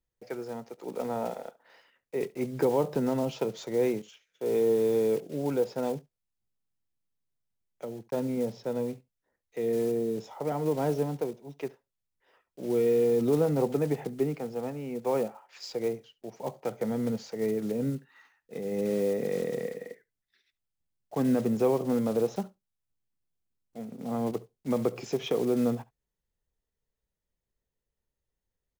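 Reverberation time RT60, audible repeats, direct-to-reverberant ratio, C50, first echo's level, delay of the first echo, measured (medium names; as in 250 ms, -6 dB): no reverb, 1, no reverb, no reverb, -22.5 dB, 70 ms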